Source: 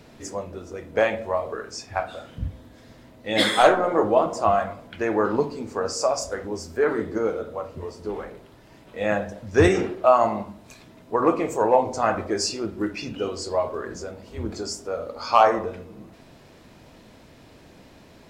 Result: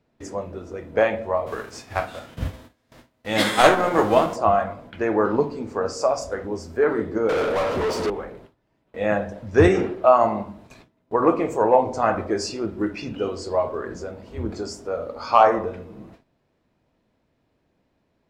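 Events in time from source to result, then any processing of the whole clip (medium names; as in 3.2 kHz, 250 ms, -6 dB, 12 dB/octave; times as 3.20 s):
1.46–4.35 s: formants flattened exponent 0.6
7.29–8.10 s: overdrive pedal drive 34 dB, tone 7.9 kHz, clips at -17.5 dBFS
whole clip: treble shelf 3.5 kHz -9.5 dB; gate with hold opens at -36 dBFS; trim +2 dB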